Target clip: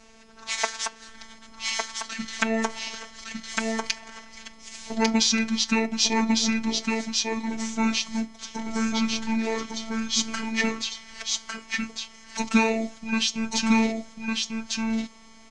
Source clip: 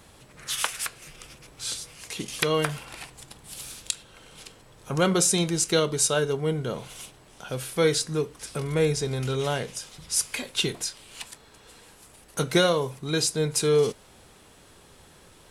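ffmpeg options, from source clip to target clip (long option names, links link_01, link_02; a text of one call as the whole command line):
ffmpeg -i in.wav -af "afftfilt=real='hypot(re,im)*cos(PI*b)':imag='0':win_size=512:overlap=0.75,aecho=1:1:1150:0.708,asetrate=28595,aresample=44100,atempo=1.54221,volume=4dB" out.wav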